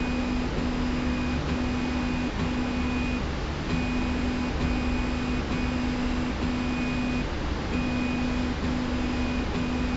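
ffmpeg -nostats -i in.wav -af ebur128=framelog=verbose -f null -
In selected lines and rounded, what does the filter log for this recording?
Integrated loudness:
  I:         -28.2 LUFS
  Threshold: -38.1 LUFS
Loudness range:
  LRA:         0.3 LU
  Threshold: -48.2 LUFS
  LRA low:   -28.3 LUFS
  LRA high:  -28.0 LUFS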